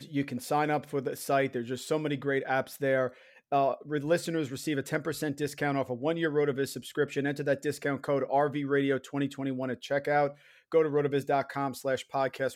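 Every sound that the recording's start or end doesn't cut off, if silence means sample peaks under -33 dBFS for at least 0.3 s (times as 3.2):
3.52–10.28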